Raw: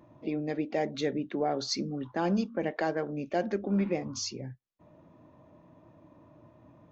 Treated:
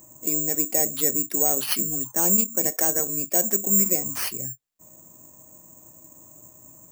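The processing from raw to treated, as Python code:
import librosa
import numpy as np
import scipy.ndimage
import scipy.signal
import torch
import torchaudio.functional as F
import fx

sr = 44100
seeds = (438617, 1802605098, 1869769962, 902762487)

y = (np.kron(x[::6], np.eye(6)[0]) * 6)[:len(x)]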